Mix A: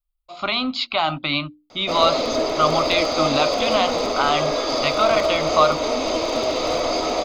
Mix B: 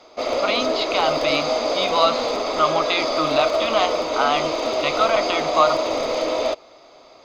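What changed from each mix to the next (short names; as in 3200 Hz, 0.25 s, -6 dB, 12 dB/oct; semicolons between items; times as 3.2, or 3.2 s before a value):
background: entry -1.70 s; master: add tone controls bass -8 dB, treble -4 dB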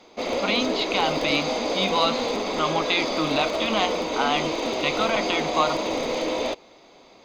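master: add thirty-one-band EQ 200 Hz +11 dB, 630 Hz -9 dB, 1250 Hz -9 dB, 5000 Hz -6 dB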